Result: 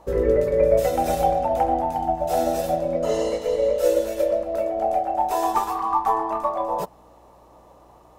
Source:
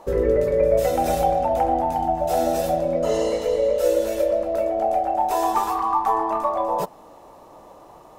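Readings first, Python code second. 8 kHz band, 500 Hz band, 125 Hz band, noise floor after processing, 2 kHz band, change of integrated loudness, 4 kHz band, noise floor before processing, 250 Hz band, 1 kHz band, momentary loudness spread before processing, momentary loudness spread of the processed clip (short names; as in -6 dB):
-1.5 dB, -0.5 dB, -1.0 dB, -51 dBFS, -1.0 dB, -1.0 dB, -1.5 dB, -47 dBFS, -1.0 dB, -1.0 dB, 4 LU, 5 LU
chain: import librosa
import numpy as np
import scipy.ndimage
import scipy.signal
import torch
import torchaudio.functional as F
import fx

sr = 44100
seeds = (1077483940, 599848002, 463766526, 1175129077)

y = fx.add_hum(x, sr, base_hz=60, snr_db=32)
y = fx.upward_expand(y, sr, threshold_db=-29.0, expansion=1.5)
y = y * librosa.db_to_amplitude(1.5)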